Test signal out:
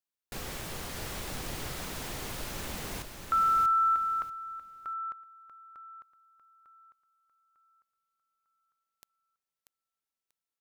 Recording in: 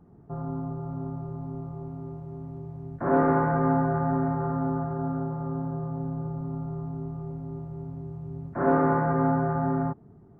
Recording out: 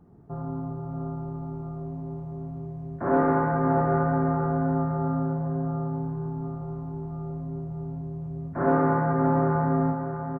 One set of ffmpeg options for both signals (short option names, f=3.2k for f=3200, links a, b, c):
-af "aecho=1:1:638|1276|1914:0.473|0.109|0.025"